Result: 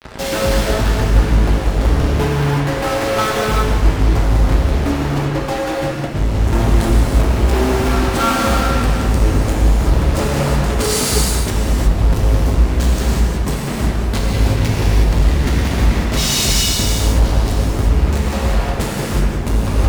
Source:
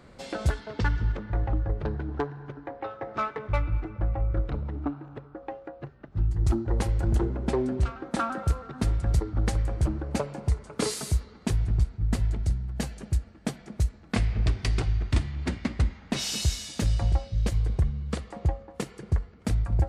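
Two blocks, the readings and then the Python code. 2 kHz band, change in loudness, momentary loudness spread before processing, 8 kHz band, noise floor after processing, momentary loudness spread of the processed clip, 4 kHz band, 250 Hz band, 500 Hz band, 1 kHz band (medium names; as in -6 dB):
+16.0 dB, +13.0 dB, 9 LU, +16.5 dB, -21 dBFS, 4 LU, +16.5 dB, +13.5 dB, +15.0 dB, +15.0 dB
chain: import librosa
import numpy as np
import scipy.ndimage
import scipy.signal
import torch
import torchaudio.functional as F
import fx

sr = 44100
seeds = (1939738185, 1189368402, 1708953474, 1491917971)

y = fx.low_shelf(x, sr, hz=140.0, db=9.0)
y = fx.fuzz(y, sr, gain_db=47.0, gate_db=-42.0)
y = fx.rev_gated(y, sr, seeds[0], gate_ms=390, shape='flat', drr_db=-5.0)
y = y * 10.0 ** (-6.0 / 20.0)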